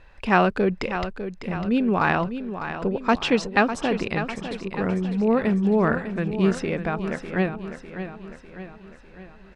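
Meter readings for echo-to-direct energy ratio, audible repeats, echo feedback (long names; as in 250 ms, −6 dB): −8.5 dB, 5, 52%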